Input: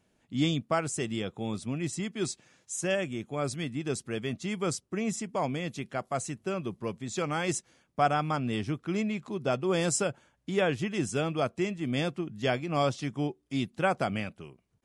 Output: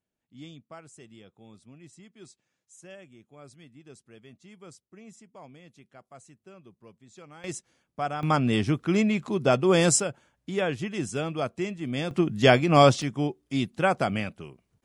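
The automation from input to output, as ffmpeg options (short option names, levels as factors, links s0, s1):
-af "asetnsamples=n=441:p=0,asendcmd='7.44 volume volume -5dB;8.23 volume volume 7dB;10 volume volume -0.5dB;12.11 volume volume 10.5dB;13.02 volume volume 3.5dB',volume=0.133"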